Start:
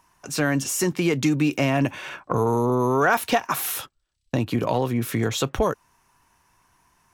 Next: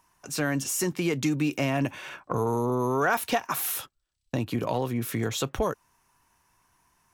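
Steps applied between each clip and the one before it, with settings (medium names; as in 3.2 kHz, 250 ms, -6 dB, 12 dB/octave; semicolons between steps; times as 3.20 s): treble shelf 8 kHz +4.5 dB; trim -5 dB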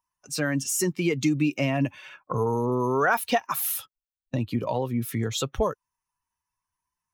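expander on every frequency bin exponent 1.5; trim +4 dB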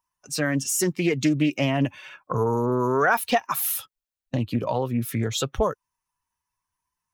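loudspeaker Doppler distortion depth 0.18 ms; trim +2 dB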